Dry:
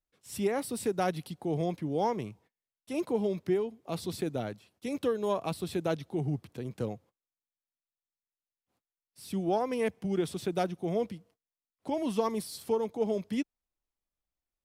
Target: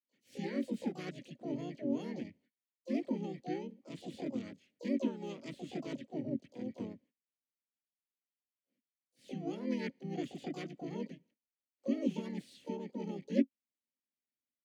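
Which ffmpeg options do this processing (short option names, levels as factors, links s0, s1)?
-filter_complex "[0:a]asplit=3[s0][s1][s2];[s0]bandpass=f=270:t=q:w=8,volume=1[s3];[s1]bandpass=f=2290:t=q:w=8,volume=0.501[s4];[s2]bandpass=f=3010:t=q:w=8,volume=0.355[s5];[s3][s4][s5]amix=inputs=3:normalize=0,asplit=4[s6][s7][s8][s9];[s7]asetrate=37084,aresample=44100,atempo=1.18921,volume=0.891[s10];[s8]asetrate=58866,aresample=44100,atempo=0.749154,volume=0.316[s11];[s9]asetrate=88200,aresample=44100,atempo=0.5,volume=0.501[s12];[s6][s10][s11][s12]amix=inputs=4:normalize=0,volume=1.26"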